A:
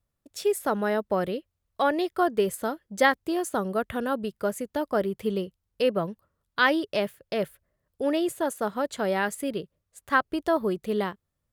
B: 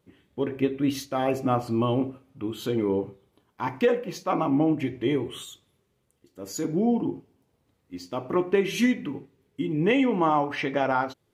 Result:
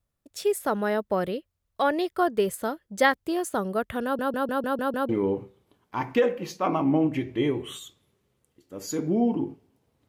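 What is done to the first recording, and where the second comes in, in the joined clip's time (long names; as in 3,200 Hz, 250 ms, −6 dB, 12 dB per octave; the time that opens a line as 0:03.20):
A
0:04.04: stutter in place 0.15 s, 7 plays
0:05.09: continue with B from 0:02.75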